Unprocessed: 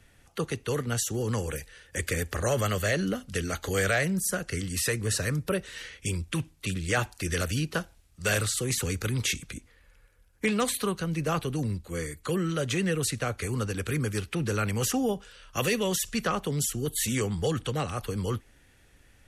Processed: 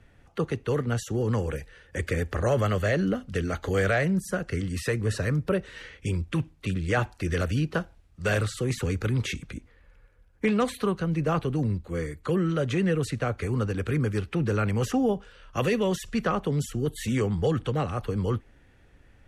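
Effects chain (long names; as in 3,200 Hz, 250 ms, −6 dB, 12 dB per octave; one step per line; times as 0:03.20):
low-pass filter 1,400 Hz 6 dB per octave
level +3.5 dB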